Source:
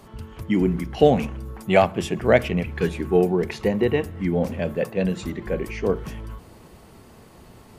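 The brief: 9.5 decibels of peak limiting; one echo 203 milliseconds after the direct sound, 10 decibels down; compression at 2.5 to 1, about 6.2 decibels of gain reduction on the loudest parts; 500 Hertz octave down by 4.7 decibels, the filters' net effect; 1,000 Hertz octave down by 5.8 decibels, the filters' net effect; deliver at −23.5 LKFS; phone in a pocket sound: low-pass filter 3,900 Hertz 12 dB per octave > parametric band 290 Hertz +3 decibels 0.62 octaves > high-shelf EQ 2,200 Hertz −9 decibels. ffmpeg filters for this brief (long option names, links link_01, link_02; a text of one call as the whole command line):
ffmpeg -i in.wav -af "equalizer=frequency=500:width_type=o:gain=-5,equalizer=frequency=1000:width_type=o:gain=-4.5,acompressor=threshold=-23dB:ratio=2.5,alimiter=limit=-21dB:level=0:latency=1,lowpass=3900,equalizer=frequency=290:width_type=o:width=0.62:gain=3,highshelf=frequency=2200:gain=-9,aecho=1:1:203:0.316,volume=8dB" out.wav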